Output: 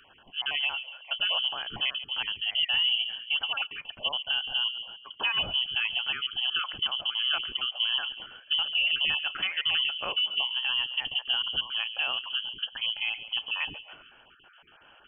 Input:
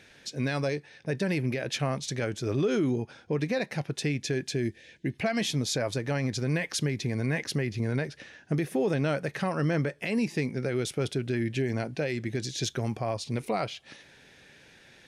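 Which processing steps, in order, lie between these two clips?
random holes in the spectrogram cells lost 27%; feedback echo behind a low-pass 139 ms, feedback 43%, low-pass 490 Hz, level -8.5 dB; frequency inversion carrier 3.2 kHz

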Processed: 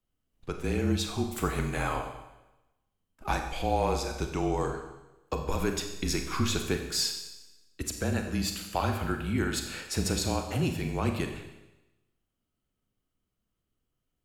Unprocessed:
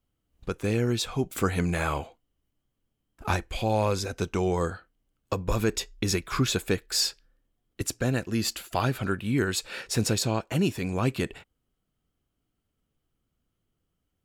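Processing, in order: frequency shift -31 Hz; dynamic bell 810 Hz, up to +5 dB, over -48 dBFS, Q 4.3; Schroeder reverb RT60 1 s, combs from 30 ms, DRR 4.5 dB; trim -4 dB

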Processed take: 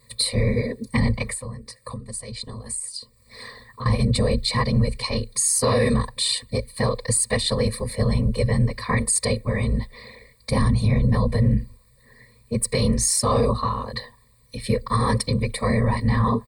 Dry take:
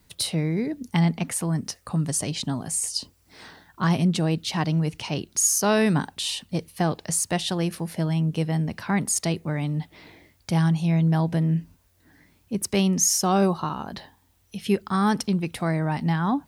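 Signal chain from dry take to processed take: whisper effect; comb 1.7 ms, depth 76%; 1.27–3.86 s: compression 10:1, threshold -34 dBFS, peak gain reduction 18.5 dB; rippled EQ curve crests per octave 0.96, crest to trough 17 dB; peak limiter -11 dBFS, peak gain reduction 7.5 dB

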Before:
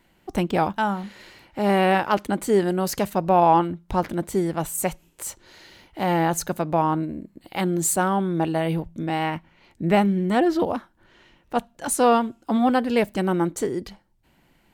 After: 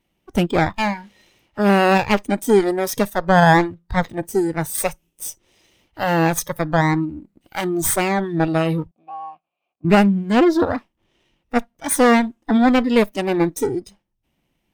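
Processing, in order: comb filter that takes the minimum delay 0.33 ms; 8.91–9.85 s: vowel filter a; spectral noise reduction 14 dB; trim +5.5 dB

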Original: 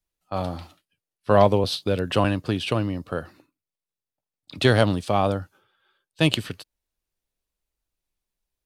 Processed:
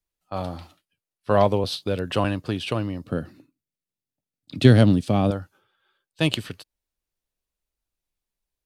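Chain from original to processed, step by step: 3.04–5.31 s: ten-band graphic EQ 125 Hz +8 dB, 250 Hz +9 dB, 1 kHz -6 dB; trim -2 dB

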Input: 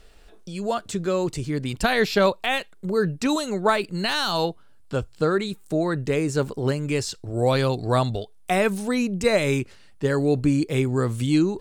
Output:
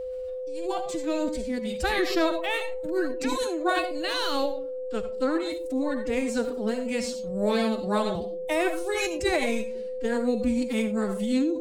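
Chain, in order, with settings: algorithmic reverb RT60 0.44 s, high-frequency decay 0.35×, pre-delay 30 ms, DRR 6.5 dB; formant-preserving pitch shift +9 st; whistle 510 Hz -26 dBFS; trim -5 dB

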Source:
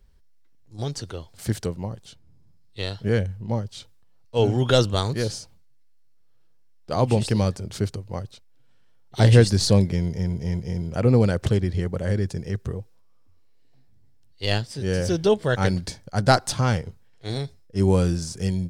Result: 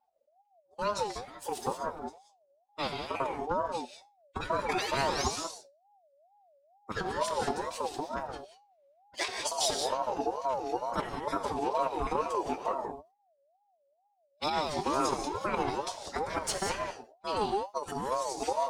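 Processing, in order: random holes in the spectrogram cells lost 26%; gate -44 dBFS, range -16 dB; dynamic bell 300 Hz, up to +6 dB, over -45 dBFS, Q 8; compressor with a negative ratio -23 dBFS, ratio -0.5; wow and flutter 29 cents; feedback comb 69 Hz, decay 0.21 s, harmonics all, mix 60%; painted sound rise, 4.67–5.30 s, 1.6–6.6 kHz -33 dBFS; formant-preserving pitch shift +7 st; gated-style reverb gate 210 ms rising, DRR 4 dB; ring modulator with a swept carrier 690 Hz, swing 20%, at 2.2 Hz

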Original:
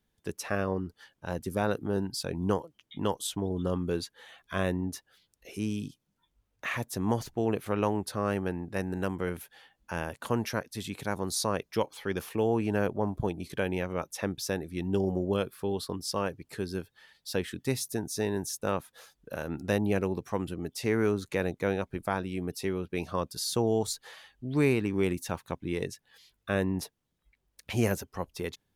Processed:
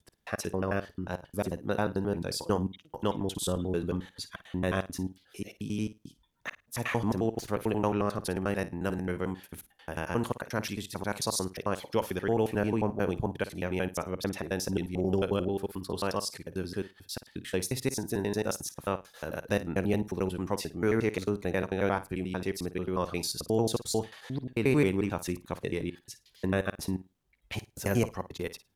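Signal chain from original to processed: slices played last to first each 89 ms, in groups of 3; flutter echo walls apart 9.2 m, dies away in 0.22 s

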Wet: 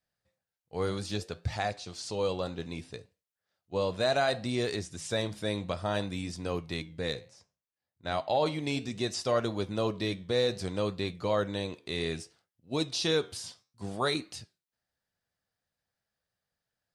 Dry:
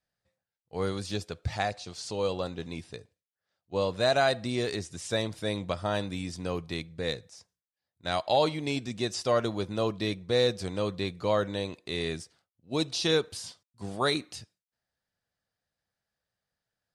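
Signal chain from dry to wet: 7.28–8.46 s: treble shelf 3.3 kHz -9 dB; in parallel at +1.5 dB: peak limiter -19.5 dBFS, peak gain reduction 7 dB; on the sum: flange 0.63 Hz, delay 7.4 ms, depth 5.9 ms, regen -81%; trim -3 dB

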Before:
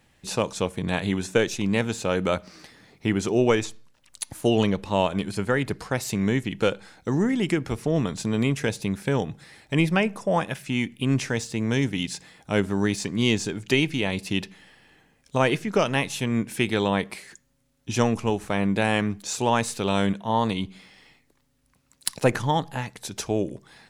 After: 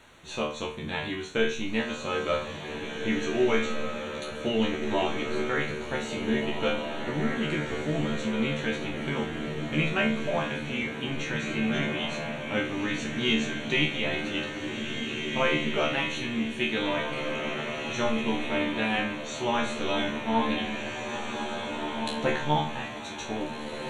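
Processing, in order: peaking EQ 4.7 kHz +14 dB 2.8 oct; feedback comb 75 Hz, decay 0.35 s, harmonics all, mix 100%; in parallel at -8.5 dB: word length cut 6-bit, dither triangular; on the sum: Butterworth band-stop 5 kHz, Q 3.3; tape spacing loss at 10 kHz 24 dB; echo that smears into a reverb 1809 ms, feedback 49%, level -4 dB; on a send at -11 dB: reverberation, pre-delay 3 ms

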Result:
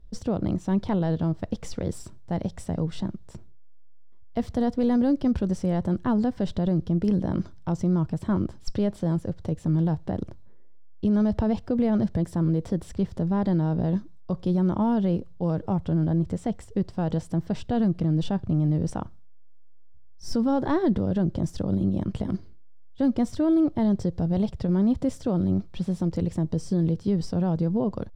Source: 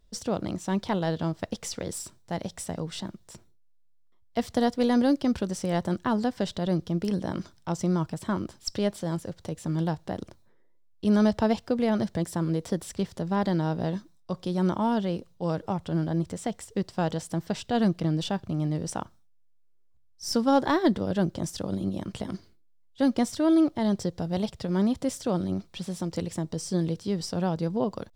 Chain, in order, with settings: tilt EQ -3 dB/octave; peak limiter -15.5 dBFS, peak gain reduction 8 dB

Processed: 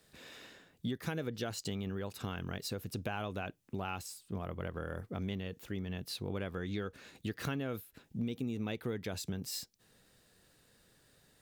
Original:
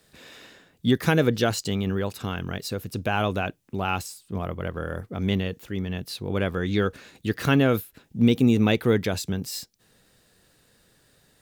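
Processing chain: compression 6:1, threshold -29 dBFS, peak gain reduction 14.5 dB; trim -5.5 dB

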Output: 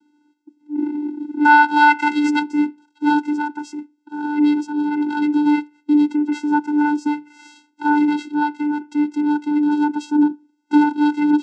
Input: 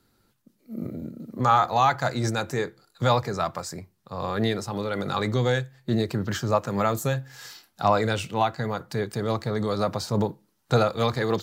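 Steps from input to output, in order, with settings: 0.75–2.39 s: peaking EQ 2.4 kHz +13.5 dB 2.2 oct; vocoder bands 8, square 296 Hz; trim +6.5 dB

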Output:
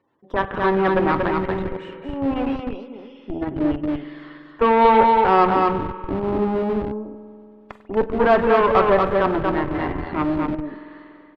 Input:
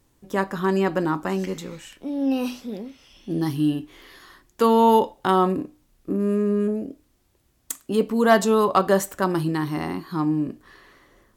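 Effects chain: tracing distortion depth 0.11 ms; de-esser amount 80%; spectral gate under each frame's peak -25 dB strong; frequency weighting A; Chebyshev shaper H 2 -21 dB, 6 -42 dB, 7 -42 dB, 8 -16 dB, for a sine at -9.5 dBFS; on a send: delay 235 ms -4 dB; on the sum: spring tank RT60 2.8 s, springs 47 ms, chirp 80 ms, DRR 11.5 dB; in parallel at -7.5 dB: Schmitt trigger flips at -29 dBFS; on the sum: distance through air 420 m; trim +5.5 dB

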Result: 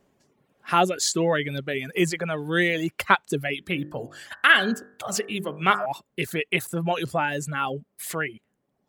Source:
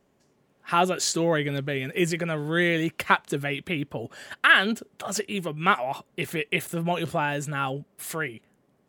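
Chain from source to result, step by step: reverb removal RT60 0.97 s; 3.55–5.86 s: de-hum 50 Hz, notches 37; trim +2 dB

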